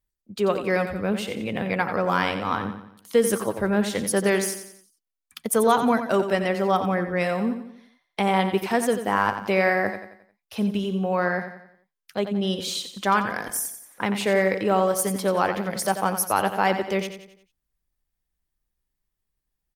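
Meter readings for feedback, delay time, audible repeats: 44%, 89 ms, 4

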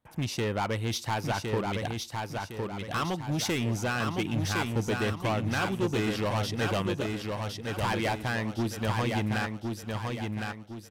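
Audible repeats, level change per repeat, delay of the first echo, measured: 5, -7.5 dB, 1060 ms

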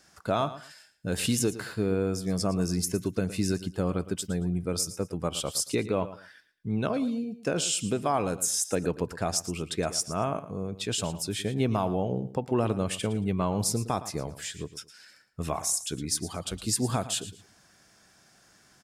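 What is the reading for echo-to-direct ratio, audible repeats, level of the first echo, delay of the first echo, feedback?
-14.5 dB, 2, -14.5 dB, 113 ms, 23%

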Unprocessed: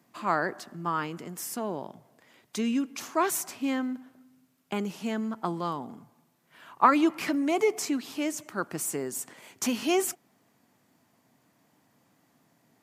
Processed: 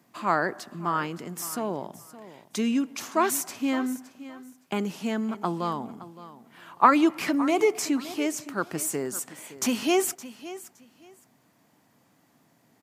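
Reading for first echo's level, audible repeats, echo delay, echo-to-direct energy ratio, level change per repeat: -16.0 dB, 2, 566 ms, -16.0 dB, -14.0 dB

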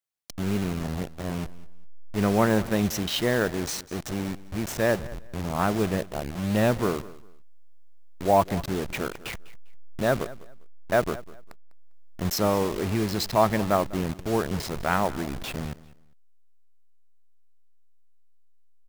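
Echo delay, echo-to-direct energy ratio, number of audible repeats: 200 ms, -19.0 dB, 2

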